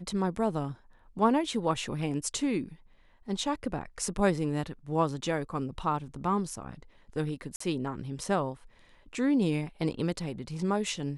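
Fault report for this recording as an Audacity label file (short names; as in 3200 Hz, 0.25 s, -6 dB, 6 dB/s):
7.560000	7.600000	gap 44 ms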